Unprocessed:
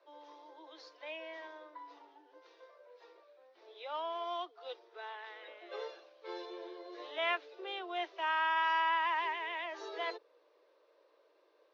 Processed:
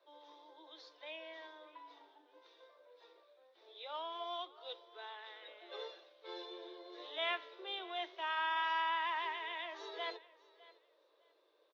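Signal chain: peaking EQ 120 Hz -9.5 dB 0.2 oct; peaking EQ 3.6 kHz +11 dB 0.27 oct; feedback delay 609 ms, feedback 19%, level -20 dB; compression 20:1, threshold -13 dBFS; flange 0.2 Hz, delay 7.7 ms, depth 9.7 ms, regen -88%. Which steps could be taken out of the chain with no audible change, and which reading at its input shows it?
peaking EQ 120 Hz: input has nothing below 290 Hz; compression, threshold -13 dBFS: peak at its input -20.5 dBFS

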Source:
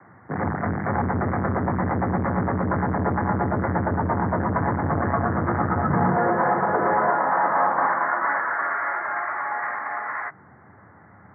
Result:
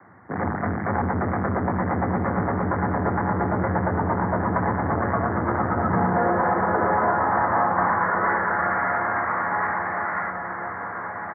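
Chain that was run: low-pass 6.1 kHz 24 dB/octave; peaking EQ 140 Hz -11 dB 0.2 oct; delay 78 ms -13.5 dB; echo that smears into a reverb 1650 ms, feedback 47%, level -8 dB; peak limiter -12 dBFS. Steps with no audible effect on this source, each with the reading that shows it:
low-pass 6.1 kHz: input has nothing above 2.2 kHz

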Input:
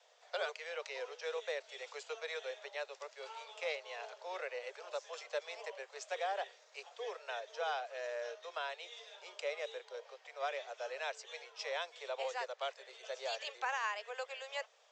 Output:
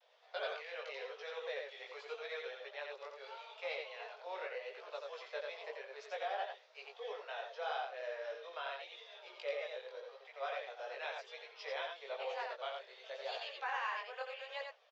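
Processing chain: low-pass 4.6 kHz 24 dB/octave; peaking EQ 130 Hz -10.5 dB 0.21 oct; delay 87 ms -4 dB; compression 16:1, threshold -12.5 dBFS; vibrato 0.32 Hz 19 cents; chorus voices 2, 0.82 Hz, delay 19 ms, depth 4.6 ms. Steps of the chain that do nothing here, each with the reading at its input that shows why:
peaking EQ 130 Hz: input has nothing below 340 Hz; compression, threshold -12.5 dBFS: peak at its input -24.0 dBFS

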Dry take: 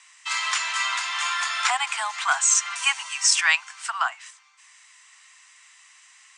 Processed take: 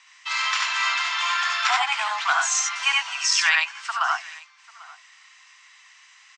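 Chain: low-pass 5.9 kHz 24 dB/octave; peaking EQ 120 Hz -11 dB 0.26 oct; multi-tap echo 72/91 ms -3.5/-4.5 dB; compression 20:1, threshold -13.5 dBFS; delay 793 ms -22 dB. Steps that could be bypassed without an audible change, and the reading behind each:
peaking EQ 120 Hz: input has nothing below 600 Hz

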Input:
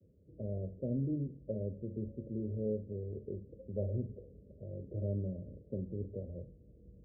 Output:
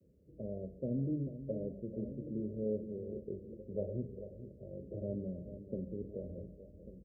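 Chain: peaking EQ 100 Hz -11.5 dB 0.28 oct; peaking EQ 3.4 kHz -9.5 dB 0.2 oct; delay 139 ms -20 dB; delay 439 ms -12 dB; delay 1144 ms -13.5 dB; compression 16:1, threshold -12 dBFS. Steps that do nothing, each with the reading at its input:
peaking EQ 3.4 kHz: input has nothing above 680 Hz; compression, threshold -12 dBFS: peak at its input -25.0 dBFS

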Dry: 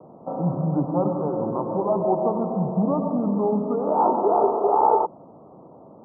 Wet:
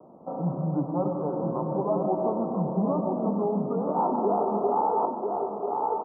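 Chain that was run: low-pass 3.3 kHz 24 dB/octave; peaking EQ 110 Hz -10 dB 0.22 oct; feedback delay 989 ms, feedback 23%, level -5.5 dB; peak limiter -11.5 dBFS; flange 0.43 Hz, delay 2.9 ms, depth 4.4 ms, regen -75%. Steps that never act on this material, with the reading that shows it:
low-pass 3.3 kHz: input has nothing above 1.3 kHz

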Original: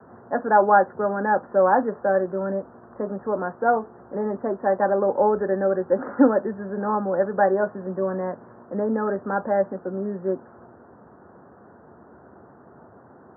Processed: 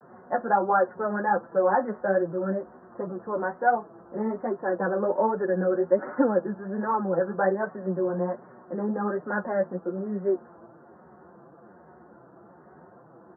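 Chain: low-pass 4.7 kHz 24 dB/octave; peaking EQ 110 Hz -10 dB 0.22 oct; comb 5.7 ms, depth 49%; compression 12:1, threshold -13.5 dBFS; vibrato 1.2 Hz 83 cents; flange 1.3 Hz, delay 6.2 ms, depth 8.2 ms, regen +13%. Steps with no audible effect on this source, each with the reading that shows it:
low-pass 4.7 kHz: input has nothing above 1.8 kHz

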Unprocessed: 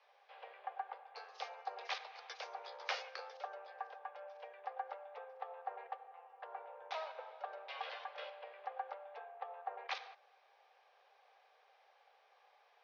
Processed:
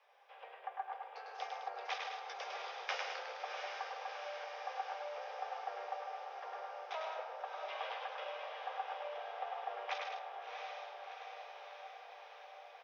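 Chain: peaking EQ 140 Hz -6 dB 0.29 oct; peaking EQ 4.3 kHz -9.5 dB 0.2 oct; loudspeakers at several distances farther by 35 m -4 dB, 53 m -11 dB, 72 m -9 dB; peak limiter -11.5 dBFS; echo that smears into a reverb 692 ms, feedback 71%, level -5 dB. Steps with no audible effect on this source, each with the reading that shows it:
peaking EQ 140 Hz: input has nothing below 380 Hz; peak limiter -11.5 dBFS: peak at its input -24.0 dBFS

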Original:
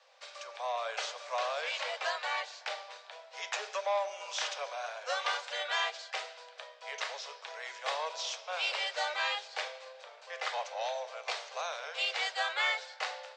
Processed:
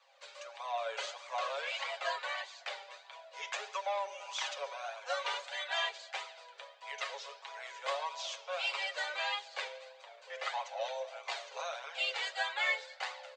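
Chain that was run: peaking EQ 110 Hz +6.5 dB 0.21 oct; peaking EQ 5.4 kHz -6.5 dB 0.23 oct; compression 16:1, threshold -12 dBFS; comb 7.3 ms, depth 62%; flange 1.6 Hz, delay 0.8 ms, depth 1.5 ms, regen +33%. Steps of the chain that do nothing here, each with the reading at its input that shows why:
peaking EQ 110 Hz: input has nothing below 380 Hz; compression, threshold -12 dBFS: peak at its input -18.5 dBFS

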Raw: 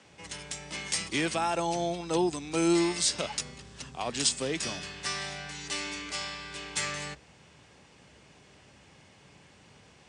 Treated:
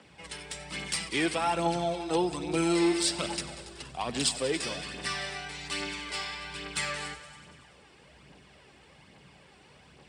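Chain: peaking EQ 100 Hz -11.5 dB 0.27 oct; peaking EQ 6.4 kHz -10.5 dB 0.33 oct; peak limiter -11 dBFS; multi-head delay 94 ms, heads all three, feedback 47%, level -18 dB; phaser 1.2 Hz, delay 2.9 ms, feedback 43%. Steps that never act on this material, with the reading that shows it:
peak limiter -11 dBFS: peak at its input -14.0 dBFS

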